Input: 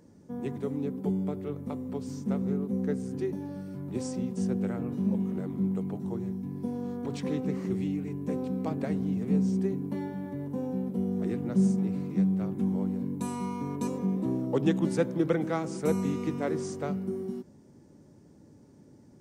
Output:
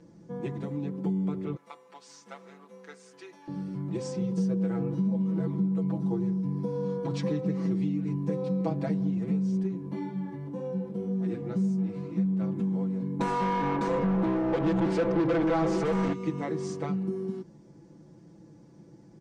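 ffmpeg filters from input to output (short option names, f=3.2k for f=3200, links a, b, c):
-filter_complex "[0:a]asettb=1/sr,asplit=3[a][b][c];[a]atrim=end=1.564[d];[b]atrim=start=1.56:end=3.48,asetpts=PTS-STARTPTS,afade=t=in:d=0.004:c=qsin,afade=t=out:st=1.916:d=0.004:c=qsin,highpass=1.1k[e];[c]atrim=start=3.476[f];[d][e]acrossfade=d=0.004:c1=hsin:c2=qsin[g];[g][f]acrossfade=d=0.004:c1=qsin:c2=hsin,asettb=1/sr,asplit=3[h][i][j];[h]atrim=end=4.214[k];[i]atrim=start=4.21:end=9.1,asetpts=PTS-STARTPTS,afade=t=in:d=0.004:c=qsin,afade=t=out:st=4.886:d=0.004:c=qsin,aecho=1:1:6.2:0.65,atrim=end_sample=215649[l];[j]atrim=start=9.096[m];[k][l]acrossfade=d=0.004:c1=hsin:c2=qsin[n];[n][m]acrossfade=d=0.004:c1=qsin:c2=hsin,asettb=1/sr,asplit=3[o][p][q];[o]atrim=end=9.634[r];[p]atrim=start=9.63:end=12.25,asetpts=PTS-STARTPTS,afade=t=in:d=0.004:c=qsin,afade=t=out:st=2.616:d=0.004:c=qsin,flanger=delay=15.5:depth=3.7:speed=1.9[s];[q]atrim=start=12.246[t];[r][s]acrossfade=d=0.004:c1=hsin:c2=qsin[u];[u][t]acrossfade=d=0.004:c1=qsin:c2=hsin,asplit=3[v][w][x];[v]afade=t=out:st=13.19:d=0.02[y];[w]asplit=2[z][aa];[aa]highpass=f=720:p=1,volume=34dB,asoftclip=type=tanh:threshold=-13.5dB[ab];[z][ab]amix=inputs=2:normalize=0,lowpass=f=1.2k:p=1,volume=-6dB,afade=t=in:st=13.19:d=0.02,afade=t=out:st=16.12:d=0.02[ac];[x]afade=t=in:st=16.12:d=0.02[ad];[y][ac][ad]amix=inputs=3:normalize=0,acompressor=threshold=-29dB:ratio=6,lowpass=6.1k,aecho=1:1:6:0.97"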